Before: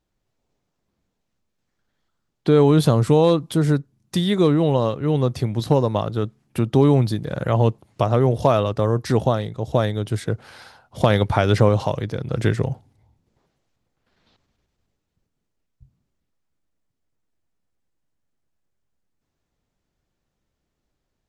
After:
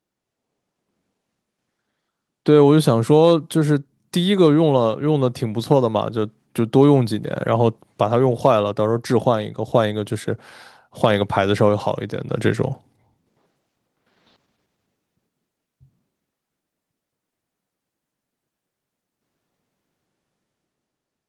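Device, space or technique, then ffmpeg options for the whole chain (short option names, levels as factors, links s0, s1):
video call: -af "highpass=160,dynaudnorm=f=150:g=11:m=2.11" -ar 48000 -c:a libopus -b:a 32k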